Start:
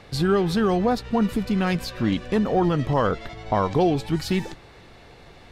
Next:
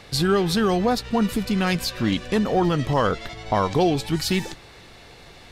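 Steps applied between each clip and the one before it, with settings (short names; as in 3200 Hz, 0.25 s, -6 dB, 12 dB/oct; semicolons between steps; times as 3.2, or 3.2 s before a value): high shelf 2600 Hz +9 dB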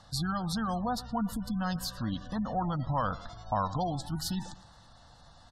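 fixed phaser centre 970 Hz, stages 4; feedback echo 0.113 s, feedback 39%, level -18 dB; spectral gate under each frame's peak -30 dB strong; gain -6.5 dB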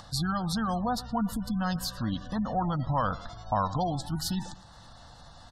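upward compressor, threshold -46 dBFS; gain +2.5 dB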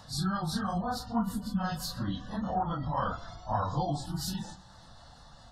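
phase scrambler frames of 0.1 s; gain -2.5 dB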